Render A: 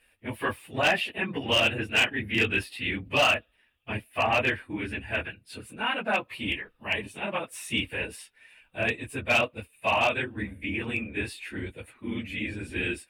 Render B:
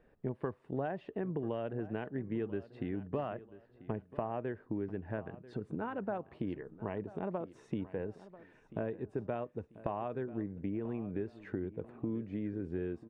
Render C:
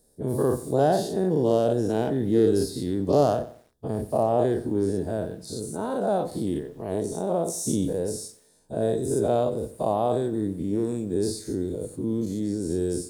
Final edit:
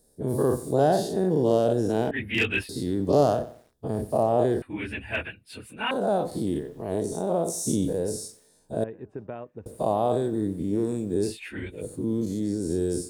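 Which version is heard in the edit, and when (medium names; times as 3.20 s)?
C
2.11–2.69 s: from A
4.62–5.91 s: from A
8.84–9.66 s: from B
11.31–11.78 s: from A, crossfade 0.16 s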